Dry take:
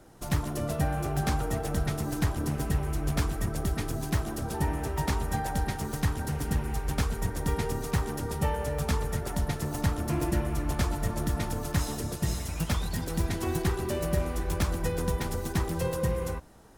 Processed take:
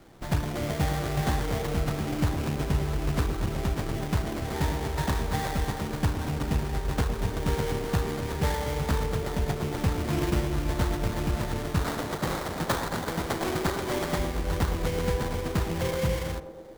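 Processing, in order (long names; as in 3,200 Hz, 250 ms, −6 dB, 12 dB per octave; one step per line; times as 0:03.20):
0:11.84–0:14.19: meter weighting curve D
sample-rate reduction 2,700 Hz, jitter 20%
feedback echo with a band-pass in the loop 111 ms, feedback 83%, band-pass 430 Hz, level −7.5 dB
level +1 dB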